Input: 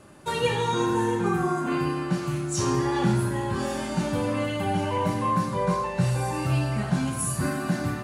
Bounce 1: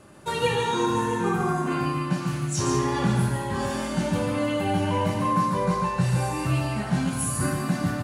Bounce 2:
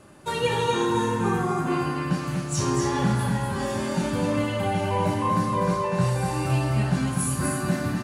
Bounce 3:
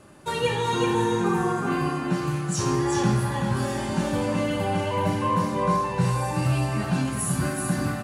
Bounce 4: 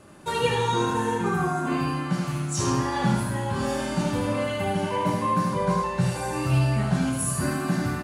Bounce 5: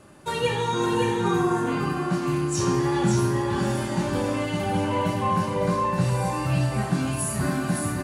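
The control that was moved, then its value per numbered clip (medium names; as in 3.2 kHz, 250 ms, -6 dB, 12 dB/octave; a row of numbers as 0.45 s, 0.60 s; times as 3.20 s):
delay, time: 142 ms, 245 ms, 377 ms, 76 ms, 561 ms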